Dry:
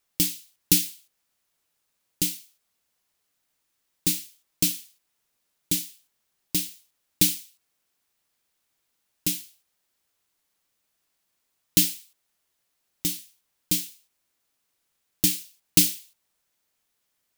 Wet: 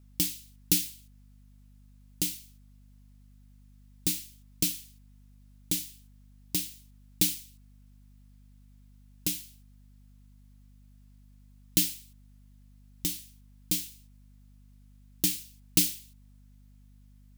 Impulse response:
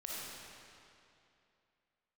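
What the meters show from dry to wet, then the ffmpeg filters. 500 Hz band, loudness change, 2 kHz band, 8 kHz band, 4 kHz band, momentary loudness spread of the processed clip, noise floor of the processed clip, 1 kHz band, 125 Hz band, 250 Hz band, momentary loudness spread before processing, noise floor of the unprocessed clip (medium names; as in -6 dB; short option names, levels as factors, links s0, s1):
-4.5 dB, -5.0 dB, -5.0 dB, -5.0 dB, -5.0 dB, 15 LU, -56 dBFS, no reading, -4.5 dB, -5.0 dB, 16 LU, -76 dBFS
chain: -filter_complex "[0:a]asplit=2[s0][s1];[s1]acompressor=threshold=0.02:ratio=6,volume=1.12[s2];[s0][s2]amix=inputs=2:normalize=0,aeval=exprs='val(0)+0.00398*(sin(2*PI*50*n/s)+sin(2*PI*2*50*n/s)/2+sin(2*PI*3*50*n/s)/3+sin(2*PI*4*50*n/s)/4+sin(2*PI*5*50*n/s)/5)':c=same,volume=0.473"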